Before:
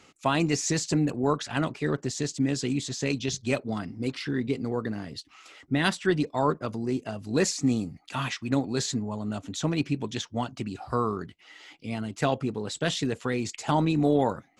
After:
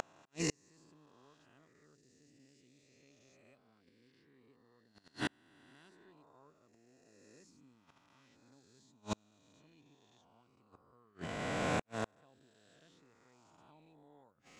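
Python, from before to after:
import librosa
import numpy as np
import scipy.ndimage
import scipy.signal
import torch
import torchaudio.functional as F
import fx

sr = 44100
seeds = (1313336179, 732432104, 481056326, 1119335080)

y = fx.spec_swells(x, sr, rise_s=2.62)
y = fx.auto_swell(y, sr, attack_ms=560.0)
y = fx.gate_flip(y, sr, shuts_db=-19.0, range_db=-40)
y = y * librosa.db_to_amplitude(-2.5)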